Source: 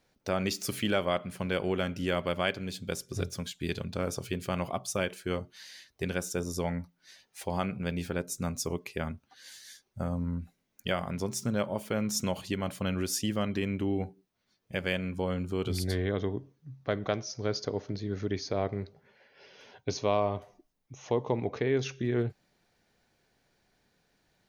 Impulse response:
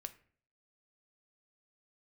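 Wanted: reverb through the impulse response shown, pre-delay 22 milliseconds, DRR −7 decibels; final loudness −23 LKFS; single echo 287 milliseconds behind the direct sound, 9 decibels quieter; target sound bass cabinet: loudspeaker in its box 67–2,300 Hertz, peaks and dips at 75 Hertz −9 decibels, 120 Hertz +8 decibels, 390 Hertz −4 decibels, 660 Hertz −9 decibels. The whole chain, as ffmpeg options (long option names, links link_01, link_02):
-filter_complex "[0:a]aecho=1:1:287:0.355,asplit=2[link_01][link_02];[1:a]atrim=start_sample=2205,adelay=22[link_03];[link_02][link_03]afir=irnorm=-1:irlink=0,volume=11dB[link_04];[link_01][link_04]amix=inputs=2:normalize=0,highpass=frequency=67:width=0.5412,highpass=frequency=67:width=1.3066,equalizer=frequency=75:width_type=q:width=4:gain=-9,equalizer=frequency=120:width_type=q:width=4:gain=8,equalizer=frequency=390:width_type=q:width=4:gain=-4,equalizer=frequency=660:width_type=q:width=4:gain=-9,lowpass=frequency=2300:width=0.5412,lowpass=frequency=2300:width=1.3066,volume=3dB"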